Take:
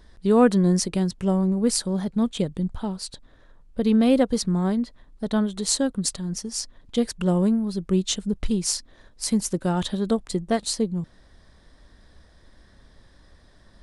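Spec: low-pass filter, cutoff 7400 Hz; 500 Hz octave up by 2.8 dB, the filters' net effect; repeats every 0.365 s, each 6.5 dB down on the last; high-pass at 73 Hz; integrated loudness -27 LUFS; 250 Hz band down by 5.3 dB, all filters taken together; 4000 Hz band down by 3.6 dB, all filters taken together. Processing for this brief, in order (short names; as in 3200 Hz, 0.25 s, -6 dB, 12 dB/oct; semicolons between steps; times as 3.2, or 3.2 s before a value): HPF 73 Hz; LPF 7400 Hz; bell 250 Hz -8 dB; bell 500 Hz +5.5 dB; bell 4000 Hz -4 dB; feedback echo 0.365 s, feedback 47%, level -6.5 dB; gain -2 dB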